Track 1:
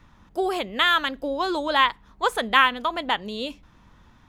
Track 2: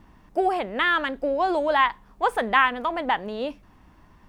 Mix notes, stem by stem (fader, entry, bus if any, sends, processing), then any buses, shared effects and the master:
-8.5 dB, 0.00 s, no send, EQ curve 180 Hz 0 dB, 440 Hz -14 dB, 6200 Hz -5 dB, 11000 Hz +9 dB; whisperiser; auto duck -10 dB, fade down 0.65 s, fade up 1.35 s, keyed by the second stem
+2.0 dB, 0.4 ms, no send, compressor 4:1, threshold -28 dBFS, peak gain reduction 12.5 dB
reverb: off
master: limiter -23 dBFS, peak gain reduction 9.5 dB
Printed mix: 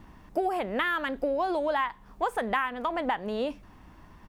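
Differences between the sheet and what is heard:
stem 1: missing whisperiser; master: missing limiter -23 dBFS, peak gain reduction 9.5 dB

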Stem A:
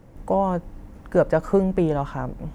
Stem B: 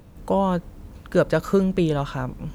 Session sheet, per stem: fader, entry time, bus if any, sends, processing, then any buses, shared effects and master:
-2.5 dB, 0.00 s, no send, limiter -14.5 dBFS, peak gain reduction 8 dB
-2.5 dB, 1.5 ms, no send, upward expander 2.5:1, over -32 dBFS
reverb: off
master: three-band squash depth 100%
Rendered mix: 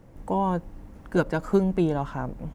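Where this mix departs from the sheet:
stem B: polarity flipped; master: missing three-band squash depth 100%

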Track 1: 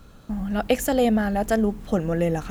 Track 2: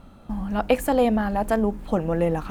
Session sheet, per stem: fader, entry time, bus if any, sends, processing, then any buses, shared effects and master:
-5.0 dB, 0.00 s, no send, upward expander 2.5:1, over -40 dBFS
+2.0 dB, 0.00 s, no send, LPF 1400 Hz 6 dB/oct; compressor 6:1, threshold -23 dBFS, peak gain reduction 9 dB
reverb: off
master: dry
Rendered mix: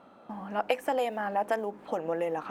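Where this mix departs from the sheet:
stem 2: polarity flipped; master: extra HPF 420 Hz 12 dB/oct

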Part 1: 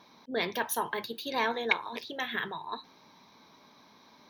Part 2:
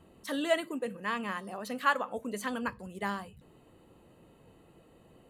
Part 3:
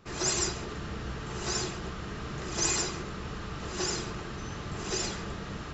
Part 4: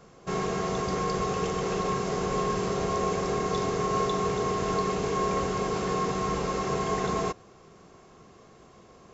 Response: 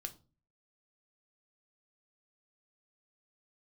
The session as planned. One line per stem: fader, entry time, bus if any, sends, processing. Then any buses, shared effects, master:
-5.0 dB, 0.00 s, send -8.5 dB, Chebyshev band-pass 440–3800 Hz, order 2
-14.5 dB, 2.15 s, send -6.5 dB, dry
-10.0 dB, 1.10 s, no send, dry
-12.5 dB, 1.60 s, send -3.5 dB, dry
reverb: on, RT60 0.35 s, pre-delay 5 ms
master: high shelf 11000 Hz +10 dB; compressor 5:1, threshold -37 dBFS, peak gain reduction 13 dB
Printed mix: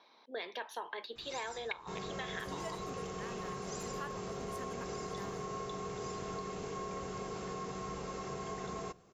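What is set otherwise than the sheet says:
stem 3 -10.0 dB -> -19.5 dB; reverb return -7.0 dB

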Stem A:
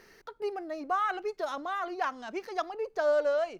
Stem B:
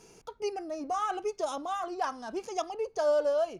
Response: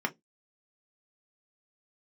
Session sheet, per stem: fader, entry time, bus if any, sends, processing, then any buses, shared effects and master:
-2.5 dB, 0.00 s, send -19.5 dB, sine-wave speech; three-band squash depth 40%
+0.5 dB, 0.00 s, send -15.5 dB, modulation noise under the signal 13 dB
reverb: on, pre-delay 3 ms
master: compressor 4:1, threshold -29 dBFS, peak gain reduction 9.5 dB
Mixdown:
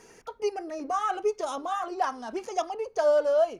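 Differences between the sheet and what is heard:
stem B: missing modulation noise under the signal 13 dB; master: missing compressor 4:1, threshold -29 dBFS, peak gain reduction 9.5 dB

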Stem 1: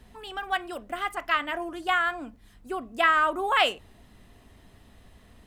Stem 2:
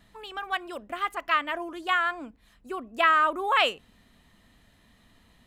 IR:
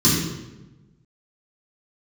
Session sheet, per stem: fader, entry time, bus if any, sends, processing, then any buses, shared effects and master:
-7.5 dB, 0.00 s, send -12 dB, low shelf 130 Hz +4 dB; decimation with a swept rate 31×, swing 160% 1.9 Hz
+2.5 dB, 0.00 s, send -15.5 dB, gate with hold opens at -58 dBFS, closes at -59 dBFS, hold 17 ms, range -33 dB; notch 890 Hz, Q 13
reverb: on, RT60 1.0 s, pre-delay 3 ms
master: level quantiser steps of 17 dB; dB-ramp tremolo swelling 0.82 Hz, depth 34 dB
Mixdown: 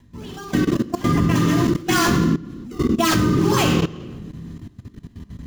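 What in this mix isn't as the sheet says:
stem 1 -7.5 dB -> +0.5 dB; master: missing dB-ramp tremolo swelling 0.82 Hz, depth 34 dB

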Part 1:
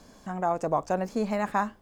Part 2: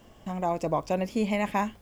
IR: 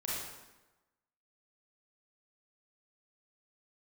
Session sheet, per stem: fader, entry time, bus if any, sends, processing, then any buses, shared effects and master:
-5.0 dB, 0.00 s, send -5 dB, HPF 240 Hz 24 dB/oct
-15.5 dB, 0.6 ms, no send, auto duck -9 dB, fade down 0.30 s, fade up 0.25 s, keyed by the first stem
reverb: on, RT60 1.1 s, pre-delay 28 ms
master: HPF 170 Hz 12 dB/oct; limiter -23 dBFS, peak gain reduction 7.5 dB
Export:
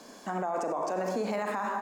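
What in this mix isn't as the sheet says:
stem 1 -5.0 dB -> +2.5 dB; master: missing HPF 170 Hz 12 dB/oct

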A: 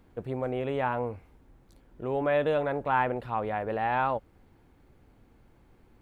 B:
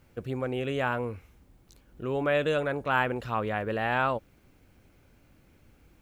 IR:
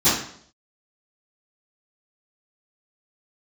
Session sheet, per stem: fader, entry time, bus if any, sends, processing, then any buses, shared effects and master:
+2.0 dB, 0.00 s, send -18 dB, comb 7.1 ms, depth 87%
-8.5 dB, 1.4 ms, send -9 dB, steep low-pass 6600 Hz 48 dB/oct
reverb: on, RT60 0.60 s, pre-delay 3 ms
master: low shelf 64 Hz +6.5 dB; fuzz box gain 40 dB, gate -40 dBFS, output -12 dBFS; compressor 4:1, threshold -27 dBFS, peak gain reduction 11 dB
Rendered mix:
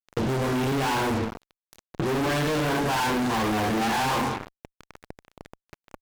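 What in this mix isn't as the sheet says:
stem A: missing comb 7.1 ms, depth 87%; stem B: polarity flipped

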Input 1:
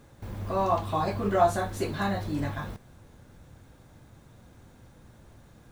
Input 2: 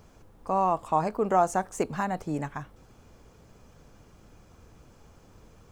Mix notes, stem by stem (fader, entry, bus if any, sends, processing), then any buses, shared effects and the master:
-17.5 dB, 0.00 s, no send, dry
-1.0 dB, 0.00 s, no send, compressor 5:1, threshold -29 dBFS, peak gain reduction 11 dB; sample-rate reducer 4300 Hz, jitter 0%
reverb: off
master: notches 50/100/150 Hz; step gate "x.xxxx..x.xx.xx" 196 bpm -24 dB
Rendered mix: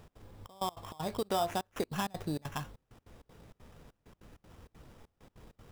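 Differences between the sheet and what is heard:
stem 2: polarity flipped; master: missing notches 50/100/150 Hz

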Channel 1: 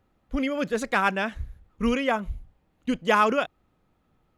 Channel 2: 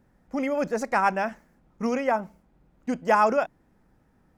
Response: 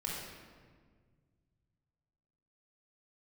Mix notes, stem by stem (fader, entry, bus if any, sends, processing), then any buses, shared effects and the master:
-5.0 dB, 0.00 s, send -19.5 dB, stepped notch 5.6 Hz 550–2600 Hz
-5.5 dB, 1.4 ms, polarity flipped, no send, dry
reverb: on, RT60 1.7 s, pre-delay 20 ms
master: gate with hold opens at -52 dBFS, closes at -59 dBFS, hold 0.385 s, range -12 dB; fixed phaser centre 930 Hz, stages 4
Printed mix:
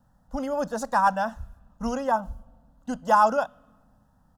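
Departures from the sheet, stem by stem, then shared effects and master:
stem 2 -5.5 dB -> +2.5 dB; master: missing gate with hold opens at -52 dBFS, closes at -59 dBFS, hold 0.385 s, range -12 dB

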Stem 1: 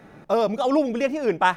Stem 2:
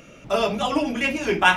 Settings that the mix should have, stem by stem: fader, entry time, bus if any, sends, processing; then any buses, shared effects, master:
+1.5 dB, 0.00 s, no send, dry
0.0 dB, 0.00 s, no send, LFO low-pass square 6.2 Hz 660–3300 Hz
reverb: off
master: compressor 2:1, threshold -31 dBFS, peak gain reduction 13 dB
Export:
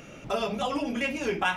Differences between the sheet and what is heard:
stem 1 +1.5 dB -> -8.5 dB; stem 2: missing LFO low-pass square 6.2 Hz 660–3300 Hz

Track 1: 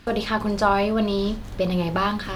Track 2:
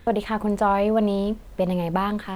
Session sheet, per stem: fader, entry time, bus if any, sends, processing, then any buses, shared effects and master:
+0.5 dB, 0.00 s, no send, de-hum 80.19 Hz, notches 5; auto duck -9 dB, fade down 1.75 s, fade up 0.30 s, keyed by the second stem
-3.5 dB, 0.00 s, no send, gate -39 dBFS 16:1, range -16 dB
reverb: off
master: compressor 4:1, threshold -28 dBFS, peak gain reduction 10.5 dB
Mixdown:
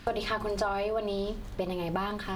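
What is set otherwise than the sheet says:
none

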